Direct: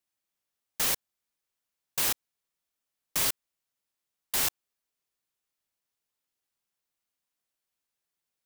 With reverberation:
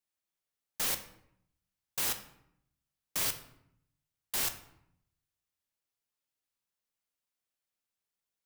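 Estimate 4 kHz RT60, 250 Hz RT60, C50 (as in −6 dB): 0.50 s, 1.0 s, 11.5 dB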